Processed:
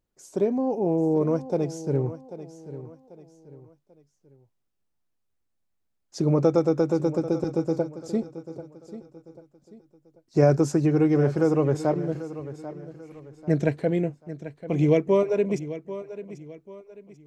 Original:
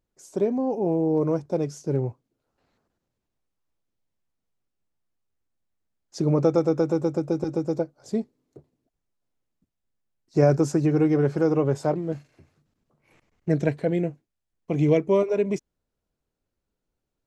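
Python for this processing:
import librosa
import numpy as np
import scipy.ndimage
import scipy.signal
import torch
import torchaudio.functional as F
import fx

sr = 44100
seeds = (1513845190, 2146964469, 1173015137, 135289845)

y = fx.echo_feedback(x, sr, ms=790, feedback_pct=36, wet_db=-14)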